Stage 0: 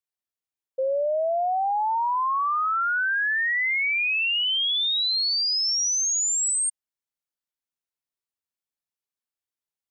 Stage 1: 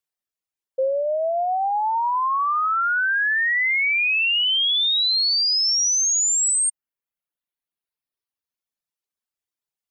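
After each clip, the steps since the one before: reverb removal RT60 1.5 s; gain +4 dB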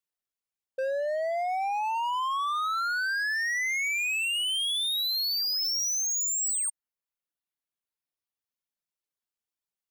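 hard clip -23.5 dBFS, distortion -12 dB; gain -4 dB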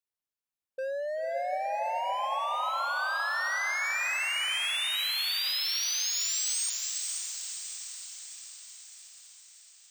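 diffused feedback echo 0.514 s, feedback 61%, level -3.5 dB; gain -4 dB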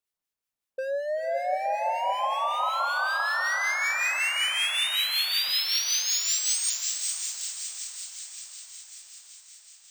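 harmonic tremolo 5.3 Hz, depth 50%, crossover 1500 Hz; gain +6 dB

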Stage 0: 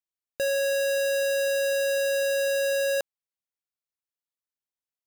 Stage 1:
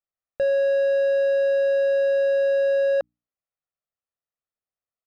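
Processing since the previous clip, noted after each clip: LPF 1600 Hz 12 dB/oct; notches 60/120/180/240/300 Hz; comb 1.6 ms, depth 45%; gain +3 dB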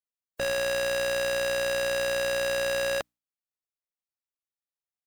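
spectral contrast lowered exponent 0.46; gain -7 dB

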